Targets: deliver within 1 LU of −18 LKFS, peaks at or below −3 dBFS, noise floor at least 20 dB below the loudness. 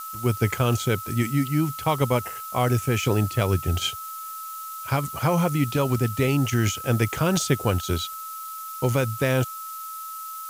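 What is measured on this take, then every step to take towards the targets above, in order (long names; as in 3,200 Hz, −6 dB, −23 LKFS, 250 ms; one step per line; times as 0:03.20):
interfering tone 1,300 Hz; level of the tone −34 dBFS; background noise floor −36 dBFS; target noise floor −45 dBFS; integrated loudness −25.0 LKFS; sample peak −7.5 dBFS; target loudness −18.0 LKFS
→ notch filter 1,300 Hz, Q 30
broadband denoise 9 dB, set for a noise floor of −36 dBFS
level +7 dB
brickwall limiter −3 dBFS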